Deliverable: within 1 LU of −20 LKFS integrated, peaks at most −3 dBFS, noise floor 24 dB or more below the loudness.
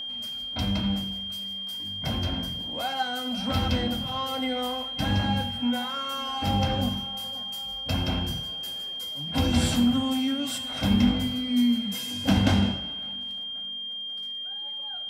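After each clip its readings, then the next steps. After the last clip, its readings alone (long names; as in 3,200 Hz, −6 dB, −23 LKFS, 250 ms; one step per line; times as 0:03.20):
crackle rate 36 per second; interfering tone 3,200 Hz; level of the tone −32 dBFS; integrated loudness −27.5 LKFS; sample peak −9.0 dBFS; target loudness −20.0 LKFS
→ click removal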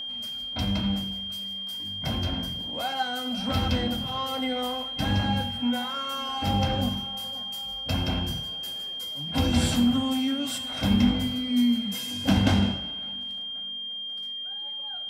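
crackle rate 0.46 per second; interfering tone 3,200 Hz; level of the tone −32 dBFS
→ notch filter 3,200 Hz, Q 30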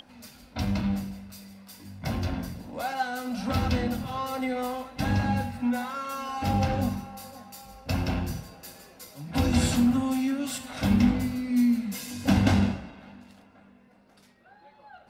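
interfering tone none found; integrated loudness −28.0 LKFS; sample peak −9.5 dBFS; target loudness −20.0 LKFS
→ level +8 dB
brickwall limiter −3 dBFS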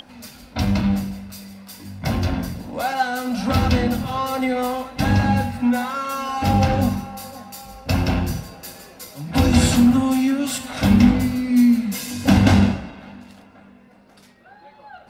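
integrated loudness −20.0 LKFS; sample peak −3.0 dBFS; background noise floor −49 dBFS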